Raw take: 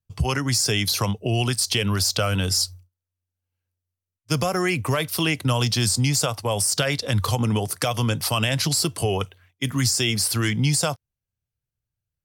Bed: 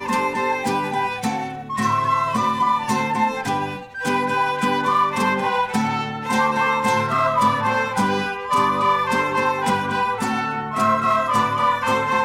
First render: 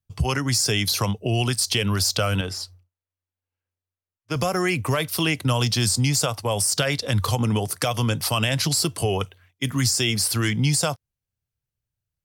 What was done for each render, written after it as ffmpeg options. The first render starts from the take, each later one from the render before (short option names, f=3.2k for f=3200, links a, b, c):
-filter_complex "[0:a]asettb=1/sr,asplit=3[a][b][c];[a]atrim=end=2.414[d];[b]atrim=start=2.41:end=4.36,asetpts=PTS-STARTPTS,afade=t=in:d=0.004:c=qsin,afade=t=out:st=1.946:d=0.004:c=qsin,bass=f=250:g=-8,treble=f=4k:g=-14[e];[c]atrim=start=4.356[f];[d][e]acrossfade=d=0.004:c1=hsin:c2=qsin[g];[g][f]acrossfade=d=0.004:c1=qsin:c2=hsin"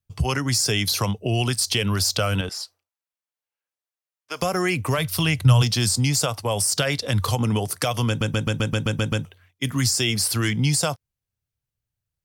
-filter_complex "[0:a]asettb=1/sr,asplit=3[a][b][c];[a]atrim=end=2.494[d];[b]atrim=start=2.49:end=4.42,asetpts=PTS-STARTPTS,afade=t=in:d=0.004:c=qsin,afade=t=out:st=1.926:d=0.004:c=qsin,highpass=580[e];[c]atrim=start=4.416[f];[d][e]acrossfade=d=0.004:c1=hsin:c2=qsin[g];[g][f]acrossfade=d=0.004:c1=qsin:c2=hsin,asplit=3[h][i][j];[h]afade=t=out:st=4.97:d=0.02[k];[i]asubboost=boost=10.5:cutoff=90,afade=t=in:st=4.97:d=0.02,afade=t=out:st=5.61:d=0.02[l];[j]afade=t=in:st=5.61:d=0.02[m];[k][l][m]amix=inputs=3:normalize=0,asplit=10[n][o][p][q][r][s][t][u][v][w];[n]atrim=end=8.212[x];[o]atrim=start=8.078:end=8.212[y];[p]atrim=start=8.078:end=8.212[z];[q]atrim=start=8.078:end=8.212[aa];[r]atrim=start=8.078:end=8.212[ab];[s]atrim=start=8.078:end=8.212[ac];[t]atrim=start=8.078:end=8.212[ad];[u]atrim=start=8.078:end=8.212[ae];[v]atrim=start=8.078:end=8.212[af];[w]atrim=start=9.248[ag];[x][y]acrossfade=d=0.004:c1=hsin:c2=hsin[ah];[ah][z]acrossfade=d=0.004:c1=hsin:c2=hsin[ai];[ai][aa]acrossfade=d=0.004:c1=hsin:c2=hsin[aj];[aj][ab]acrossfade=d=0.004:c1=hsin:c2=hsin[ak];[ak][ac]acrossfade=d=0.004:c1=hsin:c2=hsin[al];[al][ad]acrossfade=d=0.004:c1=hsin:c2=hsin[am];[am][ae]acrossfade=d=0.004:c1=hsin:c2=hsin[an];[an][af]acrossfade=d=0.004:c1=hsin:c2=hsin[ao];[ao][ag]acrossfade=d=0.004:c1=hsin:c2=hsin"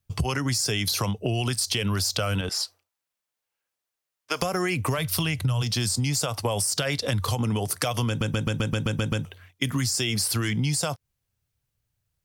-filter_complex "[0:a]asplit=2[a][b];[b]alimiter=limit=-16dB:level=0:latency=1,volume=1dB[c];[a][c]amix=inputs=2:normalize=0,acompressor=threshold=-23dB:ratio=6"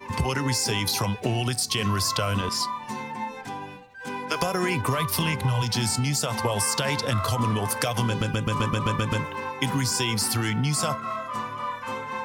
-filter_complex "[1:a]volume=-12.5dB[a];[0:a][a]amix=inputs=2:normalize=0"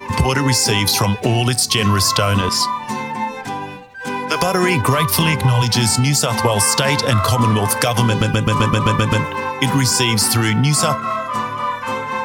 -af "volume=9.5dB,alimiter=limit=-2dB:level=0:latency=1"